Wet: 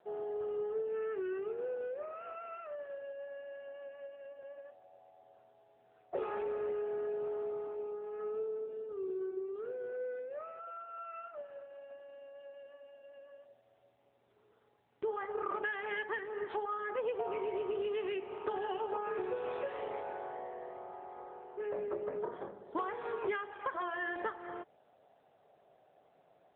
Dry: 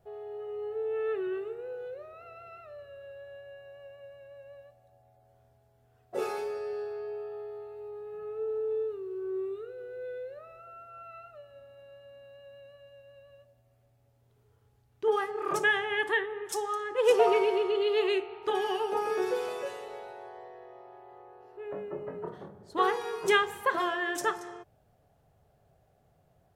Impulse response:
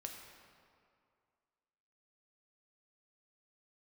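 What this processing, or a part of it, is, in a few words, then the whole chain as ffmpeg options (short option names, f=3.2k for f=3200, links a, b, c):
voicemail: -af "highpass=350,lowpass=2.7k,acompressor=threshold=-38dB:ratio=10,volume=5dB" -ar 8000 -c:a libopencore_amrnb -b:a 7950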